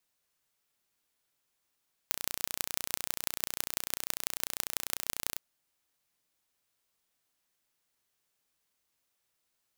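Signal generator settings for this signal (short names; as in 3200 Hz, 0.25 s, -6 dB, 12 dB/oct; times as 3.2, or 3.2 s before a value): pulse train 30.1/s, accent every 5, -1.5 dBFS 3.28 s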